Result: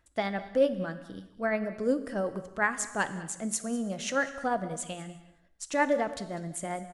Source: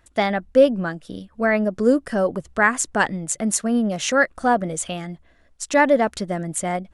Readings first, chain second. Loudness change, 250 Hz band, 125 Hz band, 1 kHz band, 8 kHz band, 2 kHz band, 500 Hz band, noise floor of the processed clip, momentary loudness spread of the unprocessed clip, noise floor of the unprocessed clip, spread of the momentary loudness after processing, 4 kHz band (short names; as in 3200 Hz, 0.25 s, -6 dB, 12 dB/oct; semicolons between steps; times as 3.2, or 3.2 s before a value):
-10.0 dB, -11.0 dB, -10.0 dB, -10.0 dB, -10.0 dB, -10.0 dB, -10.0 dB, -63 dBFS, 12 LU, -57 dBFS, 10 LU, -10.0 dB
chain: tremolo 11 Hz, depth 36%; echo 0.198 s -19 dB; non-linear reverb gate 0.4 s falling, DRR 11 dB; gain -9 dB